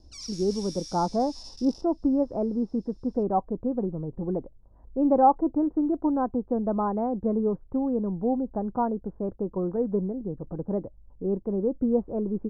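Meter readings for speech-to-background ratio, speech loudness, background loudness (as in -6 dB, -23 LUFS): 14.0 dB, -27.5 LUFS, -41.5 LUFS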